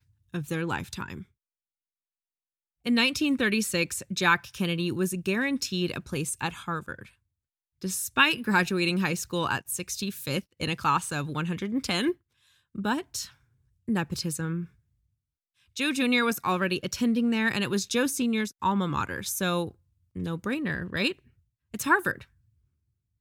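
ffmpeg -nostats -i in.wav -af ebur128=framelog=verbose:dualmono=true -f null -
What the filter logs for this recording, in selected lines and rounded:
Integrated loudness:
  I:         -24.7 LUFS
  Threshold: -35.3 LUFS
Loudness range:
  LRA:         5.0 LU
  Threshold: -45.5 LUFS
  LRA low:   -28.3 LUFS
  LRA high:  -23.3 LUFS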